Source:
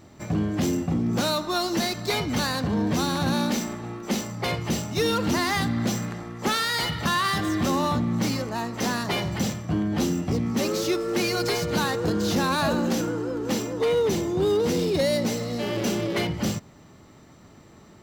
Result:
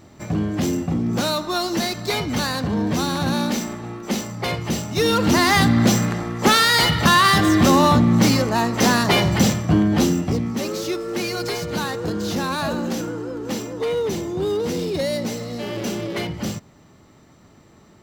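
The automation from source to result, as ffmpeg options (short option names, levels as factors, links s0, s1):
-af "volume=2.99,afade=t=in:st=4.86:d=0.81:silence=0.446684,afade=t=out:st=9.64:d=0.95:silence=0.316228"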